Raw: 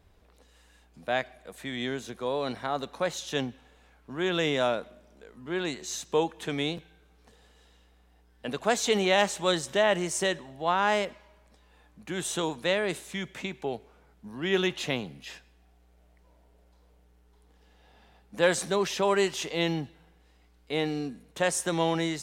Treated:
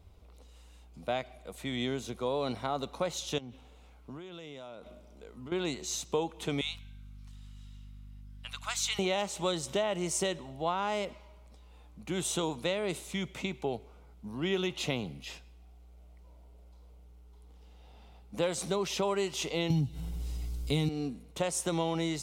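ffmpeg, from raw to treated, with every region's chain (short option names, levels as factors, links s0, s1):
-filter_complex "[0:a]asettb=1/sr,asplit=3[s0][s1][s2];[s0]atrim=end=3.384[s3];[s1]atrim=start=3.38:end=5.52,asetpts=PTS-STARTPTS,afade=t=in:d=0.004:c=qsin,afade=t=out:st=2.136:d=0.004:c=qsin,highpass=49,acompressor=threshold=0.00891:ratio=16:attack=3.2:release=140:knee=1:detection=peak[s4];[s2]atrim=start=5.516[s5];[s3][s4]acrossfade=d=0.004:c1=hsin:c2=qsin[s6];[s6][s5]acrossfade=d=0.004:c1=qsin:c2=hsin,asettb=1/sr,asplit=3[s7][s8][s9];[s7]atrim=end=6.614[s10];[s8]atrim=start=6.61:end=8.99,asetpts=PTS-STARTPTS,afade=t=in:d=0.004:c=qsin,afade=t=out:st=2.376:d=0.004:c=qsin,highpass=f=1200:w=0.5412,highpass=f=1200:w=1.3066,aeval=exprs='val(0)+0.00251*(sin(2*PI*50*n/s)+sin(2*PI*2*50*n/s)/2+sin(2*PI*3*50*n/s)/3+sin(2*PI*4*50*n/s)/4+sin(2*PI*5*50*n/s)/5)':c=same[s11];[s9]atrim=start=8.986[s12];[s10][s11]acrossfade=d=0.004:c1=hsin:c2=qsin[s13];[s13][s12]acrossfade=d=0.004:c1=qsin:c2=hsin,asettb=1/sr,asplit=3[s14][s15][s16];[s14]atrim=end=19.704[s17];[s15]atrim=start=19.7:end=20.89,asetpts=PTS-STARTPTS,afade=t=in:d=0.004:c=qsin,afade=t=out:st=1.186:d=0.004:c=qsin,bass=f=250:g=15,treble=f=4000:g=14,aecho=1:1:7.3:0.4,atrim=end_sample=52479,acompressor=mode=upward:threshold=0.0251:ratio=2.5:attack=3.2:release=140:knee=2.83:detection=peak[s18];[s16]atrim=start=20.886[s19];[s17][s18]acrossfade=d=0.004:c1=hsin:c2=qsin[s20];[s20][s19]acrossfade=d=0.004:c1=qsin:c2=hsin,equalizer=f=69:w=0.91:g=8,acompressor=threshold=0.0447:ratio=4,equalizer=f=1700:w=6.4:g=-14.5"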